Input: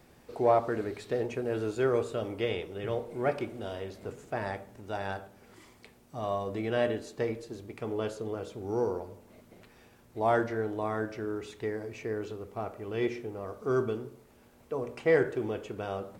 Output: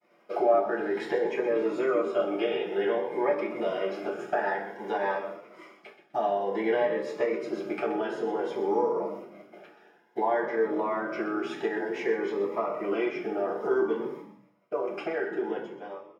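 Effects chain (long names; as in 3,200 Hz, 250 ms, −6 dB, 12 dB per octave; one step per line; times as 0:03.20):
fade-out on the ending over 2.19 s
downward expander −47 dBFS
high-pass filter 440 Hz 12 dB per octave
downward compressor 4 to 1, threshold −43 dBFS, peak gain reduction 18.5 dB
echo with shifted repeats 126 ms, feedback 37%, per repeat −80 Hz, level −11.5 dB
convolution reverb RT60 0.40 s, pre-delay 3 ms, DRR −20 dB
phaser whose notches keep moving one way rising 0.55 Hz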